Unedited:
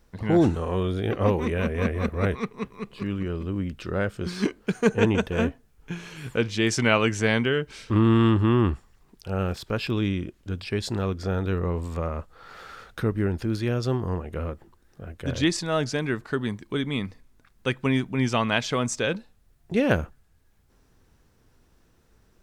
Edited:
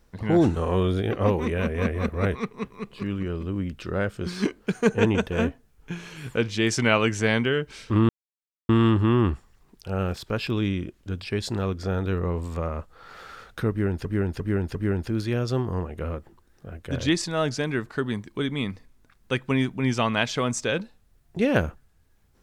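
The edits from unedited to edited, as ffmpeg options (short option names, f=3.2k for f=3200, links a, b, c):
-filter_complex "[0:a]asplit=7[a][b][c][d][e][f][g];[a]atrim=end=0.572[h];[b]atrim=start=0.568:end=1.022,asetpts=PTS-STARTPTS,volume=3dB[i];[c]atrim=start=1.018:end=8.09,asetpts=PTS-STARTPTS,afade=t=out:st=7.068:d=0.004:c=hsin,apad=pad_dur=0.6[j];[d]atrim=start=8.09:end=13.452,asetpts=PTS-STARTPTS,afade=t=in:d=0.004:c=hsin[k];[e]atrim=start=13.098:end=13.452[l];[f]atrim=start=13.098:end=13.452[m];[g]atrim=start=13.098[n];[h][i]acrossfade=d=0.004:c1=hsin:c2=hsin[o];[j][k]concat=n=2:v=0:a=1[p];[o][p]acrossfade=d=0.004:c1=hsin:c2=hsin[q];[q][l]acrossfade=d=0.004:c1=hsin:c2=hsin[r];[r][m]acrossfade=d=0.004:c1=hsin:c2=hsin[s];[s][n]acrossfade=d=0.004:c1=hsin:c2=hsin"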